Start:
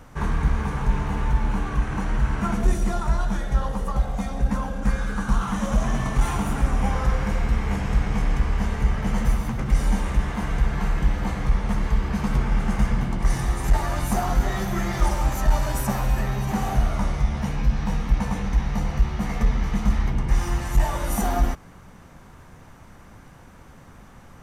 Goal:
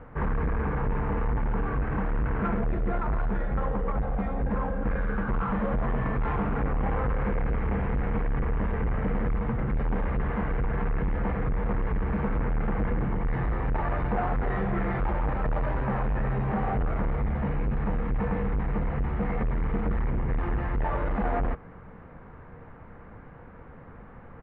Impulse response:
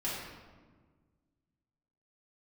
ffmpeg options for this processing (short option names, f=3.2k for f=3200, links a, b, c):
-af "aresample=11025,asoftclip=type=hard:threshold=-23.5dB,aresample=44100,lowpass=f=2.1k:w=0.5412,lowpass=f=2.1k:w=1.3066,equalizer=f=470:t=o:w=0.2:g=9.5"